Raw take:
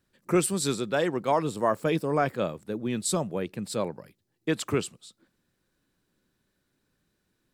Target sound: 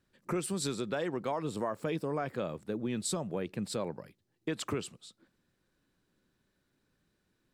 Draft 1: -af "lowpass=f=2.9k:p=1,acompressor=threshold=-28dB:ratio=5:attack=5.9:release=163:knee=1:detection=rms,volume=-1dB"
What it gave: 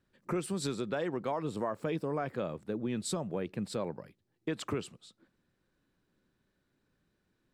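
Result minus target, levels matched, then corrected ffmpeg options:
8000 Hz band -3.5 dB
-af "lowpass=f=6.4k:p=1,acompressor=threshold=-28dB:ratio=5:attack=5.9:release=163:knee=1:detection=rms,volume=-1dB"

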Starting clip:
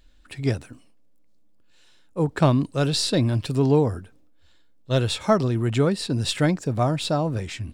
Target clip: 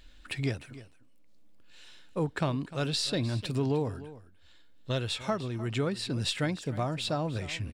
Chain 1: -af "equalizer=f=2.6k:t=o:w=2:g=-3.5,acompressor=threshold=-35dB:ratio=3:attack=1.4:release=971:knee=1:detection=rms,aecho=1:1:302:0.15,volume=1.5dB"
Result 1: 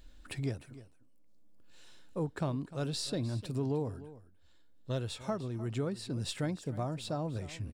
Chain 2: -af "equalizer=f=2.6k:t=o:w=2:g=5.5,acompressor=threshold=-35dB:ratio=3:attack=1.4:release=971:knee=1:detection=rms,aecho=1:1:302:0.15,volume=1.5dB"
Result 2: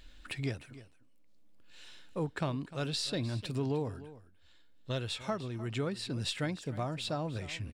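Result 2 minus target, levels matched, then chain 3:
compressor: peak gain reduction +4.5 dB
-af "equalizer=f=2.6k:t=o:w=2:g=5.5,acompressor=threshold=-28.5dB:ratio=3:attack=1.4:release=971:knee=1:detection=rms,aecho=1:1:302:0.15,volume=1.5dB"

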